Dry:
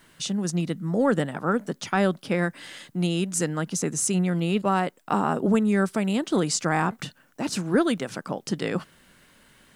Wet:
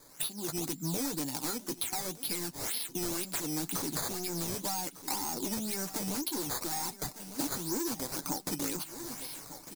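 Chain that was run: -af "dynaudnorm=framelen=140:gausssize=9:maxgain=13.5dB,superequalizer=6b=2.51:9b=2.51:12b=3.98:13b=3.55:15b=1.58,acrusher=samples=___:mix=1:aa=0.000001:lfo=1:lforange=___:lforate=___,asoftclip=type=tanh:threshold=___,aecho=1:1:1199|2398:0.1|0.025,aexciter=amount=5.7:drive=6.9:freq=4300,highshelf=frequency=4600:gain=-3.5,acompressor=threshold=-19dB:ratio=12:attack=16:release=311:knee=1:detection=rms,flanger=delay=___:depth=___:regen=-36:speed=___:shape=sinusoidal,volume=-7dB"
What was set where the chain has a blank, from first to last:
11, 11, 2, -12dB, 6.7, 1.5, 0.82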